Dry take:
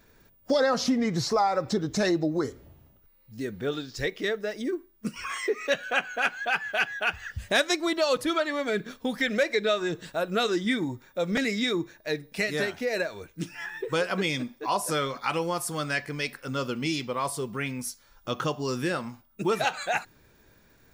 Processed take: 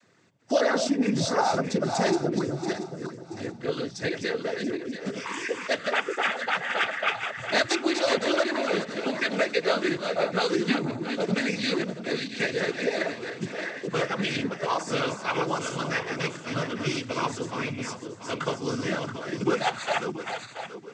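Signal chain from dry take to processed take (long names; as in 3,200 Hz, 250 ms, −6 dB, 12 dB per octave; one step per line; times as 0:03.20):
feedback delay that plays each chunk backwards 341 ms, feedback 56%, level −6 dB
cochlear-implant simulation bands 16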